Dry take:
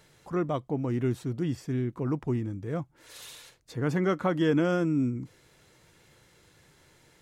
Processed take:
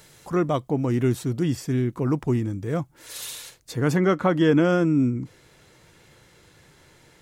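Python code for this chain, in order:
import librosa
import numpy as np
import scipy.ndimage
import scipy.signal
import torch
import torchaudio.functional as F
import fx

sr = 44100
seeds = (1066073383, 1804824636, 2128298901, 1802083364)

y = fx.high_shelf(x, sr, hz=5300.0, db=fx.steps((0.0, 9.0), (3.95, -2.5)))
y = y * 10.0 ** (6.0 / 20.0)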